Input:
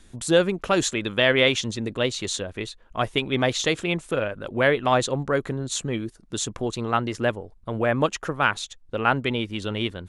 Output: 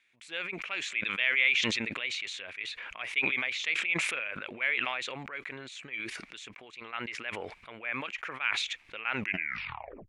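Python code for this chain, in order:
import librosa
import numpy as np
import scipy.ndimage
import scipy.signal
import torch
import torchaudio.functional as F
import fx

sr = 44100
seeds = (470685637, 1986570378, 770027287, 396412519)

y = fx.tape_stop_end(x, sr, length_s=0.98)
y = fx.bandpass_q(y, sr, hz=2300.0, q=6.7)
y = fx.sustainer(y, sr, db_per_s=25.0)
y = F.gain(torch.from_numpy(y), 2.0).numpy()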